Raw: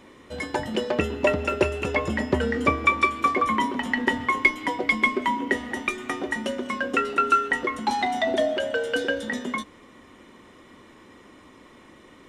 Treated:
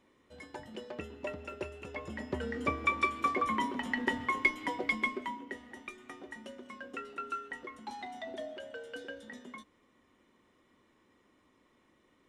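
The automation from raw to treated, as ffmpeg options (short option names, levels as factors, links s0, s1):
-af "volume=0.376,afade=t=in:st=1.91:d=1.19:silence=0.334965,afade=t=out:st=4.82:d=0.64:silence=0.316228"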